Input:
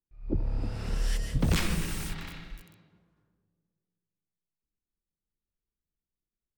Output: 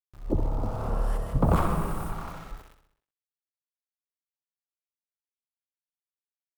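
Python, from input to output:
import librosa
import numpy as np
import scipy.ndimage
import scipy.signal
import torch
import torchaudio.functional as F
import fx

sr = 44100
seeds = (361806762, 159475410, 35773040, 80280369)

y = fx.curve_eq(x, sr, hz=(320.0, 620.0, 1200.0, 1800.0, 5800.0, 10000.0), db=(0, 9, 10, -11, -20, -8))
y = np.where(np.abs(y) >= 10.0 ** (-48.0 / 20.0), y, 0.0)
y = fx.echo_feedback(y, sr, ms=64, feedback_pct=55, wet_db=-10)
y = F.gain(torch.from_numpy(y), 2.5).numpy()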